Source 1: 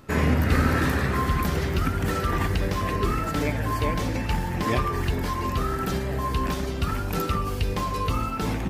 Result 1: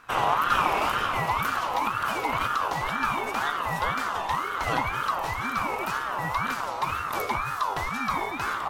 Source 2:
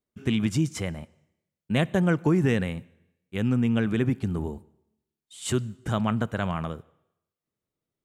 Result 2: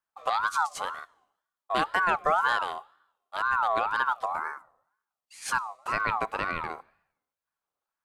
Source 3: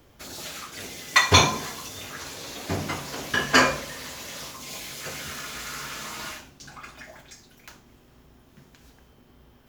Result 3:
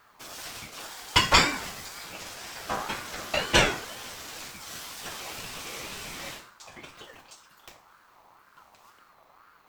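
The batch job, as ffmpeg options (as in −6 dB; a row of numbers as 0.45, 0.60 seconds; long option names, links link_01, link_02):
-af "aeval=exprs='val(0)*sin(2*PI*1100*n/s+1100*0.2/2*sin(2*PI*2*n/s))':channel_layout=same"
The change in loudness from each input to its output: −1.0, −1.5, −3.0 LU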